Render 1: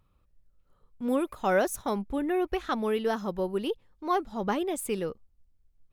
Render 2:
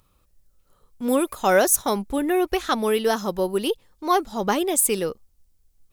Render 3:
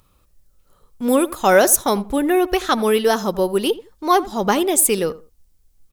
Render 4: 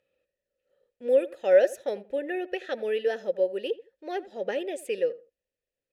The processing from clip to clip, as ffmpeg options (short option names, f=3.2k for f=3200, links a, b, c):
-af "bass=f=250:g=-4,treble=f=4k:g=11,volume=7dB"
-filter_complex "[0:a]asplit=2[a][b];[b]adelay=83,lowpass=f=1.6k:p=1,volume=-17dB,asplit=2[c][d];[d]adelay=83,lowpass=f=1.6k:p=1,volume=0.21[e];[a][c][e]amix=inputs=3:normalize=0,volume=4.5dB"
-filter_complex "[0:a]asplit=3[a][b][c];[a]bandpass=f=530:t=q:w=8,volume=0dB[d];[b]bandpass=f=1.84k:t=q:w=8,volume=-6dB[e];[c]bandpass=f=2.48k:t=q:w=8,volume=-9dB[f];[d][e][f]amix=inputs=3:normalize=0"